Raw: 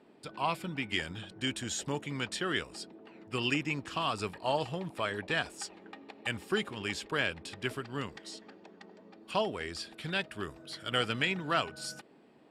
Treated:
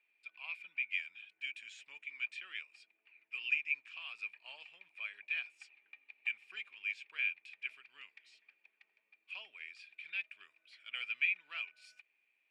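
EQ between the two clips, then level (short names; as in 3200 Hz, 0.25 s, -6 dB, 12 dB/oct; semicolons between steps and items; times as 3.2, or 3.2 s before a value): band-pass 2400 Hz, Q 16; tilt +2 dB/oct; +3.5 dB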